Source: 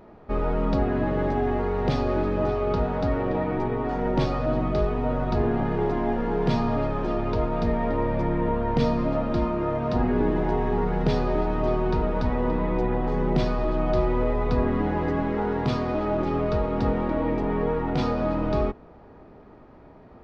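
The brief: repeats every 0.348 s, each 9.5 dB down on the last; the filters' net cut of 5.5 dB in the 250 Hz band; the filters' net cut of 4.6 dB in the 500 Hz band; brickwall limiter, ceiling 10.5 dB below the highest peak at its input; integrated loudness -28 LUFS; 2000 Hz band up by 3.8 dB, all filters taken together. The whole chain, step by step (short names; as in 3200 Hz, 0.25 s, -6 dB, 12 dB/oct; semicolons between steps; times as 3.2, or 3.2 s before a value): bell 250 Hz -6 dB; bell 500 Hz -4.5 dB; bell 2000 Hz +5 dB; limiter -22 dBFS; feedback echo 0.348 s, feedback 33%, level -9.5 dB; gain +3 dB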